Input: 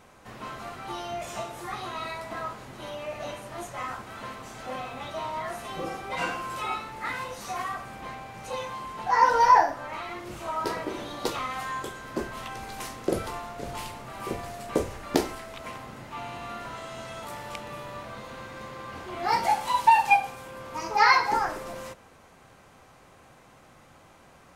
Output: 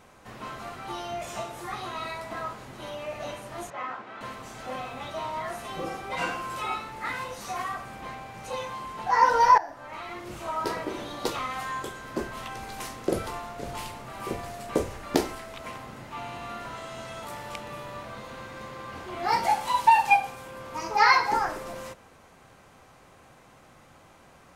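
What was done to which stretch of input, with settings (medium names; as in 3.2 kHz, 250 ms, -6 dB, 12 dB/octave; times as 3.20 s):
3.70–4.21 s: band-pass 230–3000 Hz
9.58–10.43 s: fade in equal-power, from -17.5 dB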